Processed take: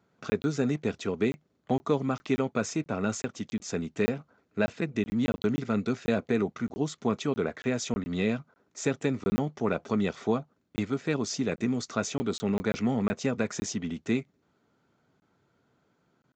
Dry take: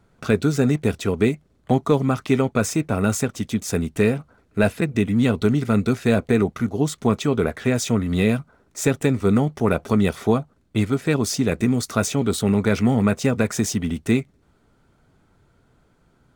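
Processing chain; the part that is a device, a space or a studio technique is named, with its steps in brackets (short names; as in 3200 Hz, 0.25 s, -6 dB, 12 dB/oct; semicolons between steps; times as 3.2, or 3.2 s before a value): call with lost packets (HPF 150 Hz 12 dB/oct; downsampling 16000 Hz; packet loss packets of 20 ms random); gain -7.5 dB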